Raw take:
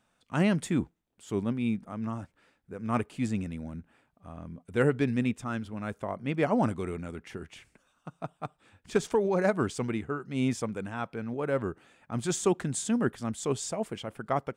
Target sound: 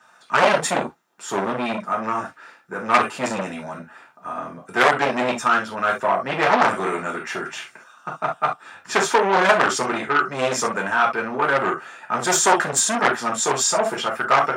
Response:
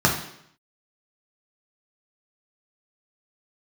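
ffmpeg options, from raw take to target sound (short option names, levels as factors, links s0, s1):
-filter_complex "[1:a]atrim=start_sample=2205,atrim=end_sample=3528[s0];[0:a][s0]afir=irnorm=-1:irlink=0,acontrast=89,highpass=740,volume=0.668"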